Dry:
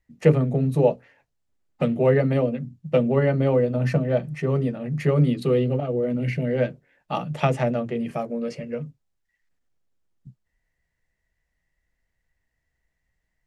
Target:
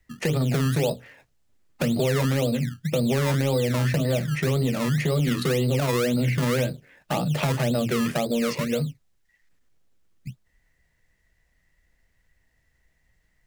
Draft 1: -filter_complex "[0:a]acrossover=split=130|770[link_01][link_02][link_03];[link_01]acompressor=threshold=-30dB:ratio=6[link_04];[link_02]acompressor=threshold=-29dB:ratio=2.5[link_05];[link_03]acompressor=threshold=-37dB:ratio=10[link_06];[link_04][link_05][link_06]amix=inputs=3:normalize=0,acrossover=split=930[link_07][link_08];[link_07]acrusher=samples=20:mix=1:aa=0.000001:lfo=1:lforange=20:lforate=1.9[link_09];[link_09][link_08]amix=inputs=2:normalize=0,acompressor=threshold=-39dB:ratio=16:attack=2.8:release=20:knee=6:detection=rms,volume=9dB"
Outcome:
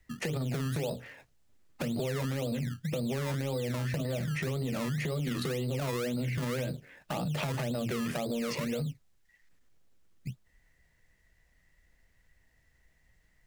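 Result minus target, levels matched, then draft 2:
downward compressor: peak gain reduction +10.5 dB
-filter_complex "[0:a]acrossover=split=130|770[link_01][link_02][link_03];[link_01]acompressor=threshold=-30dB:ratio=6[link_04];[link_02]acompressor=threshold=-29dB:ratio=2.5[link_05];[link_03]acompressor=threshold=-37dB:ratio=10[link_06];[link_04][link_05][link_06]amix=inputs=3:normalize=0,acrossover=split=930[link_07][link_08];[link_07]acrusher=samples=20:mix=1:aa=0.000001:lfo=1:lforange=20:lforate=1.9[link_09];[link_09][link_08]amix=inputs=2:normalize=0,acompressor=threshold=-28dB:ratio=16:attack=2.8:release=20:knee=6:detection=rms,volume=9dB"

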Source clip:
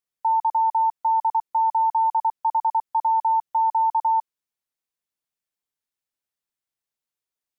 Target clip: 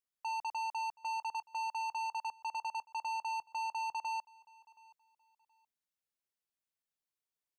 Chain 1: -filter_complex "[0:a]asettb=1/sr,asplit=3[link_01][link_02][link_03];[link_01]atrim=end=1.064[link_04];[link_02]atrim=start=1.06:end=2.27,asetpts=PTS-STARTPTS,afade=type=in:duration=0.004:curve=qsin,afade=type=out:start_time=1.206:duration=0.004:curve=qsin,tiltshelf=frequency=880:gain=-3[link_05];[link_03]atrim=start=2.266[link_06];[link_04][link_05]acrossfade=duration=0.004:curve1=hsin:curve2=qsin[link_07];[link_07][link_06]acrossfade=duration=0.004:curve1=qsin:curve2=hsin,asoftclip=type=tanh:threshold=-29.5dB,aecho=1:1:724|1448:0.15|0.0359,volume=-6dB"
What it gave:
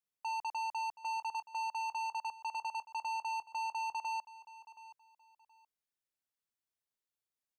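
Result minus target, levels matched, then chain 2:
echo-to-direct +7 dB
-filter_complex "[0:a]asettb=1/sr,asplit=3[link_01][link_02][link_03];[link_01]atrim=end=1.064[link_04];[link_02]atrim=start=1.06:end=2.27,asetpts=PTS-STARTPTS,afade=type=in:duration=0.004:curve=qsin,afade=type=out:start_time=1.206:duration=0.004:curve=qsin,tiltshelf=frequency=880:gain=-3[link_05];[link_03]atrim=start=2.266[link_06];[link_04][link_05]acrossfade=duration=0.004:curve1=hsin:curve2=qsin[link_07];[link_07][link_06]acrossfade=duration=0.004:curve1=qsin:curve2=hsin,asoftclip=type=tanh:threshold=-29.5dB,aecho=1:1:724|1448:0.0668|0.016,volume=-6dB"

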